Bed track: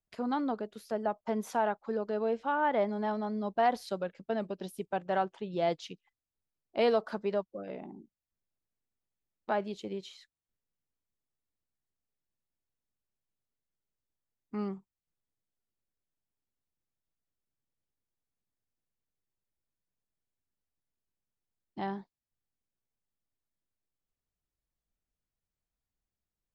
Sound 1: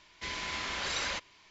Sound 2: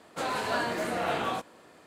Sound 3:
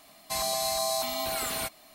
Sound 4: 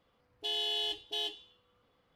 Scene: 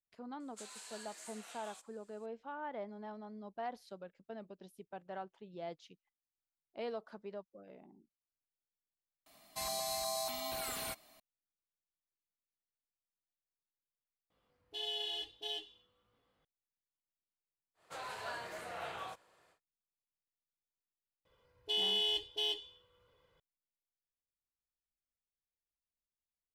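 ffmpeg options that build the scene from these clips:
-filter_complex "[2:a]asplit=2[a][b];[4:a]asplit=2[c][d];[0:a]volume=-14.5dB[e];[a]bandpass=f=7.8k:t=q:w=2.2:csg=0[f];[c]flanger=delay=18.5:depth=2.2:speed=1.6[g];[b]equalizer=f=250:t=o:w=1.1:g=-15[h];[d]aecho=1:1:2:0.69[i];[e]asplit=3[j][k][l];[j]atrim=end=9.264[m];[3:a]atrim=end=1.94,asetpts=PTS-STARTPTS,volume=-9dB[n];[k]atrim=start=11.196:end=14.304[o];[g]atrim=end=2.15,asetpts=PTS-STARTPTS,volume=-3.5dB[p];[l]atrim=start=16.446[q];[f]atrim=end=1.86,asetpts=PTS-STARTPTS,volume=-2.5dB,afade=t=in:d=0.004:c=hsin,afade=t=out:st=1.856:d=0.004:c=hsin,adelay=400[r];[h]atrim=end=1.86,asetpts=PTS-STARTPTS,volume=-12dB,afade=t=in:d=0.1,afade=t=out:st=1.76:d=0.1,adelay=17740[s];[i]atrim=end=2.15,asetpts=PTS-STARTPTS,volume=-2.5dB,afade=t=in:d=0.004:c=hsin,afade=t=out:st=2.146:d=0.004:c=hsin,adelay=21250[t];[m][n]acrossfade=d=0.004:c1=hsin:c2=hsin[u];[u][o]acrossfade=d=0.004:c1=hsin:c2=hsin[v];[v][p]acrossfade=d=0.004:c1=hsin:c2=hsin[w];[w][q]acrossfade=d=0.004:c1=hsin:c2=hsin[x];[x][r][s][t]amix=inputs=4:normalize=0"

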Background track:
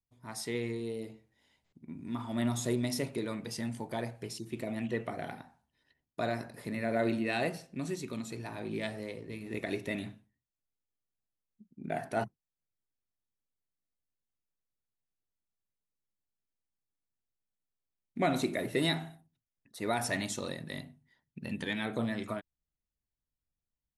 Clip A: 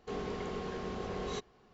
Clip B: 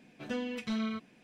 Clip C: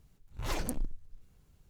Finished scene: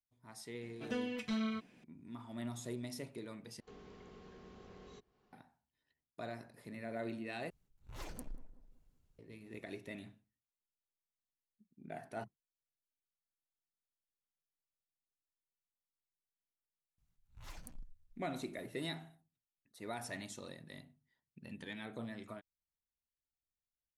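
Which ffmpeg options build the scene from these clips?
-filter_complex "[3:a]asplit=2[a][b];[0:a]volume=-11.5dB[c];[1:a]acrossover=split=110|450|920[d][e][f][g];[d]acompressor=threshold=-53dB:ratio=3[h];[e]acompressor=threshold=-46dB:ratio=3[i];[f]acompressor=threshold=-60dB:ratio=3[j];[g]acompressor=threshold=-54dB:ratio=3[k];[h][i][j][k]amix=inputs=4:normalize=0[l];[a]asplit=2[m][n];[n]adelay=188,lowpass=f=1.3k:p=1,volume=-14dB,asplit=2[o][p];[p]adelay=188,lowpass=f=1.3k:p=1,volume=0.45,asplit=2[q][r];[r]adelay=188,lowpass=f=1.3k:p=1,volume=0.45,asplit=2[s][t];[t]adelay=188,lowpass=f=1.3k:p=1,volume=0.45[u];[m][o][q][s][u]amix=inputs=5:normalize=0[v];[b]equalizer=f=400:t=o:w=1.2:g=-12[w];[c]asplit=3[x][y][z];[x]atrim=end=3.604[aa];[l]atrim=end=1.73,asetpts=PTS-STARTPTS,volume=-11dB[ab];[y]atrim=start=5.326:end=7.504[ac];[v]atrim=end=1.69,asetpts=PTS-STARTPTS,volume=-13dB[ad];[z]atrim=start=9.186[ae];[2:a]atrim=end=1.23,asetpts=PTS-STARTPTS,volume=-3dB,afade=t=in:d=0.004:c=hsin,afade=t=out:st=1.226:d=0.004:c=hsin,adelay=610[af];[w]atrim=end=1.69,asetpts=PTS-STARTPTS,volume=-16dB,afade=t=in:d=0.004:c=hsin,afade=t=out:st=1.686:d=0.004:c=hsin,adelay=16980[ag];[aa][ab]acrossfade=d=0.004:c1=hsin:c2=hsin[ah];[ah][ac]acrossfade=d=0.004:c1=hsin:c2=hsin[ai];[ai][ad]acrossfade=d=0.004:c1=hsin:c2=hsin[aj];[aj][ae]acrossfade=d=0.004:c1=hsin:c2=hsin[ak];[ak][af][ag]amix=inputs=3:normalize=0"

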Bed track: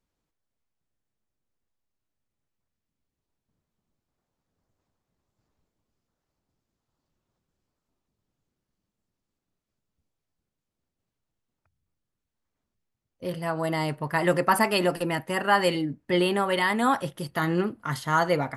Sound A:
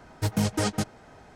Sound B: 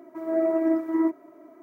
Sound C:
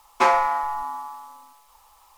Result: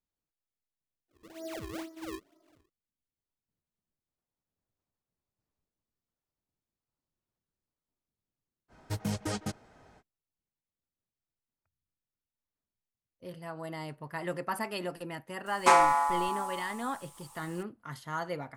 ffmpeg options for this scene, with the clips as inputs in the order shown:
-filter_complex "[0:a]volume=-12.5dB[a];[2:a]acrusher=samples=35:mix=1:aa=0.000001:lfo=1:lforange=56:lforate=2.1[b];[3:a]equalizer=f=8.7k:t=o:w=0.67:g=15[c];[b]atrim=end=1.62,asetpts=PTS-STARTPTS,volume=-17.5dB,afade=t=in:d=0.1,afade=t=out:st=1.52:d=0.1,adelay=1080[d];[1:a]atrim=end=1.35,asetpts=PTS-STARTPTS,volume=-8dB,afade=t=in:d=0.05,afade=t=out:st=1.3:d=0.05,adelay=8680[e];[c]atrim=end=2.17,asetpts=PTS-STARTPTS,volume=-3dB,afade=t=in:d=0.004:c=hsin,afade=t=out:st=2.166:d=0.004:c=hsin,adelay=15460[f];[a][d][e][f]amix=inputs=4:normalize=0"

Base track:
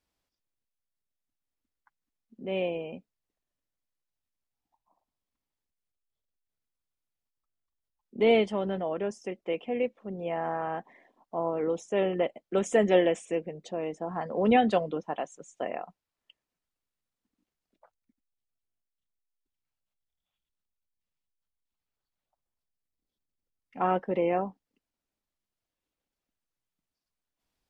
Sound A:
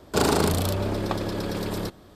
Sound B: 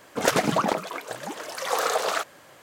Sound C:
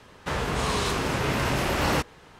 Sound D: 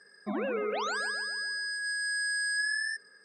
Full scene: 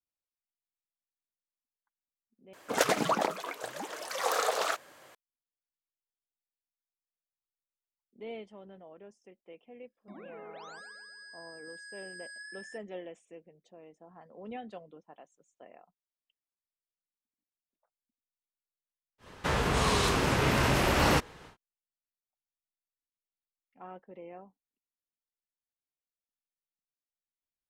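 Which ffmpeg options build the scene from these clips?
-filter_complex "[0:a]volume=-20dB[a];[2:a]bass=f=250:g=-6,treble=f=4k:g=0[b];[4:a]agate=range=-25dB:threshold=-48dB:ratio=16:release=100:detection=peak[c];[a]asplit=2[d][e];[d]atrim=end=2.534[f];[b]atrim=end=2.62,asetpts=PTS-STARTPTS,volume=-4.5dB[g];[e]atrim=start=5.146[h];[c]atrim=end=3.24,asetpts=PTS-STARTPTS,volume=-16dB,afade=t=in:d=0.004:c=hsin,afade=t=out:st=3.236:d=0.004:c=hsin,adelay=9810[i];[3:a]atrim=end=2.39,asetpts=PTS-STARTPTS,volume=-0.5dB,afade=t=in:d=0.1,afade=t=out:st=2.29:d=0.1,adelay=19180[j];[f][g]acrossfade=d=0.004:c1=hsin:c2=hsin[k];[k][h]acrossfade=d=0.004:c1=hsin:c2=hsin[l];[l][i][j]amix=inputs=3:normalize=0"

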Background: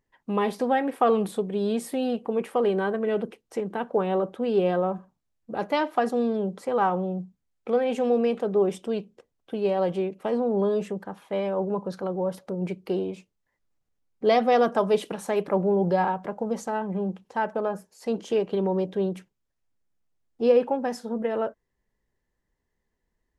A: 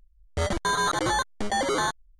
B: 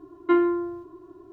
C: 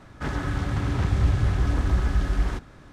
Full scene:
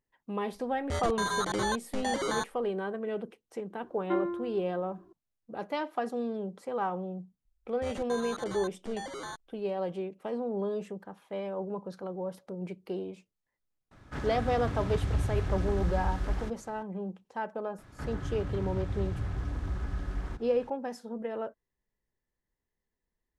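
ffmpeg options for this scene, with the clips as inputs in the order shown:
-filter_complex "[1:a]asplit=2[a][b];[3:a]asplit=2[c][d];[0:a]volume=-8.5dB[e];[d]acrossover=split=190|1900[f][g][h];[f]acompressor=threshold=-24dB:ratio=4[i];[g]acompressor=threshold=-37dB:ratio=4[j];[h]acompressor=threshold=-53dB:ratio=4[k];[i][j][k]amix=inputs=3:normalize=0[l];[a]atrim=end=2.19,asetpts=PTS-STARTPTS,volume=-6.5dB,afade=t=in:d=0.004:c=hsin,afade=t=out:st=2.186:d=0.004:c=hsin,adelay=530[m];[2:a]atrim=end=1.32,asetpts=PTS-STARTPTS,volume=-10.5dB,afade=t=in:d=0.004:c=hsin,afade=t=out:st=1.316:d=0.004:c=hsin,adelay=168021S[n];[b]atrim=end=2.19,asetpts=PTS-STARTPTS,volume=-15dB,afade=t=in:d=0.004:c=hsin,afade=t=out:st=2.186:d=0.004:c=hsin,adelay=7450[o];[c]atrim=end=2.92,asetpts=PTS-STARTPTS,volume=-8dB,afade=t=in:d=0.004:c=hsin,afade=t=out:st=2.916:d=0.004:c=hsin,adelay=13910[p];[l]atrim=end=2.92,asetpts=PTS-STARTPTS,volume=-6.5dB,afade=t=in:d=0.004:c=hsin,afade=t=out:st=2.916:d=0.004:c=hsin,adelay=17780[q];[e][m][n][o][p][q]amix=inputs=6:normalize=0"

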